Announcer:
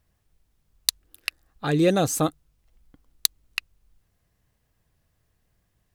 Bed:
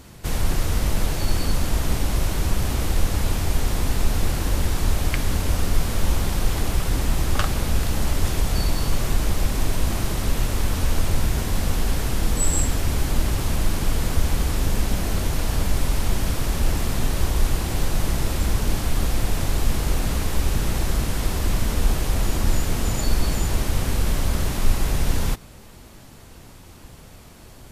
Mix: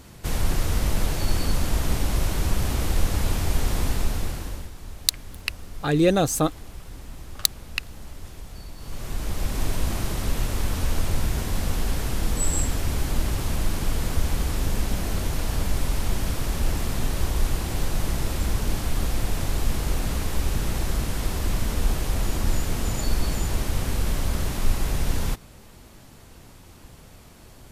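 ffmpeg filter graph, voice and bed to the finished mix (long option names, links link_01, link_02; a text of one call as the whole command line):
ffmpeg -i stem1.wav -i stem2.wav -filter_complex "[0:a]adelay=4200,volume=1dB[link_01];[1:a]volume=13.5dB,afade=type=out:start_time=3.83:duration=0.88:silence=0.149624,afade=type=in:start_time=8.77:duration=0.88:silence=0.177828[link_02];[link_01][link_02]amix=inputs=2:normalize=0" out.wav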